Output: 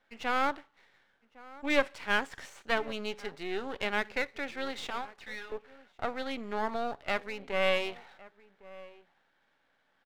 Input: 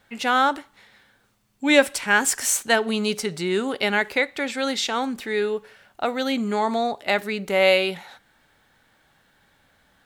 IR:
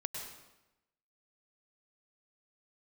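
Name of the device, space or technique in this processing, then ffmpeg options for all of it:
crystal radio: -filter_complex "[0:a]asettb=1/sr,asplit=3[a][b][c];[a]atrim=end=4.904[d];[b]atrim=start=4.9:end=5.52,asetpts=PTS-STARTPTS,afade=t=in:d=0.004:c=qsin,afade=t=out:st=0.616:d=0.004:c=qsin,highpass=f=650:w=0.5412,highpass=f=650:w=1.3066[e];[c]atrim=start=5.516[f];[d][e]acrossfade=d=0.004:c1=hsin:c2=qsin[g];[g][f]acrossfade=d=0.004:c1=qsin:c2=hsin,deesser=0.4,highpass=310,lowpass=3k,asplit=2[h][i];[i]adelay=1108,volume=-19dB,highshelf=f=4k:g=-24.9[j];[h][j]amix=inputs=2:normalize=0,aeval=exprs='if(lt(val(0),0),0.251*val(0),val(0))':c=same,volume=-6.5dB"

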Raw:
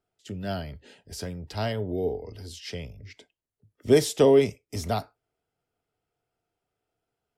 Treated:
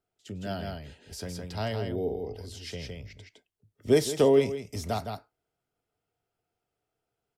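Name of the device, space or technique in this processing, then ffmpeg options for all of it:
ducked delay: -filter_complex "[0:a]asplit=3[a][b][c];[b]adelay=162,volume=-3dB[d];[c]apad=whole_len=332517[e];[d][e]sidechaincompress=threshold=-27dB:ratio=8:attack=12:release=438[f];[a][f]amix=inputs=2:normalize=0,volume=-3dB"

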